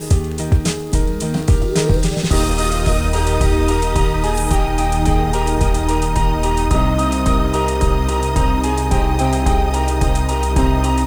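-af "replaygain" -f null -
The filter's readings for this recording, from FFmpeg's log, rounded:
track_gain = +2.3 dB
track_peak = 0.466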